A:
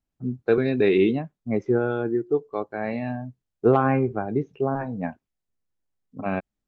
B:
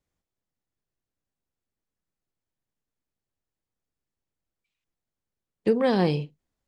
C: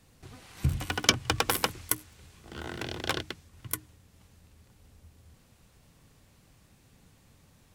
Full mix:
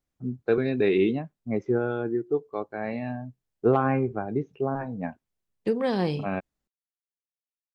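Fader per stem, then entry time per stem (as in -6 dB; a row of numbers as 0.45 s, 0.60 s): -3.0 dB, -3.5 dB, mute; 0.00 s, 0.00 s, mute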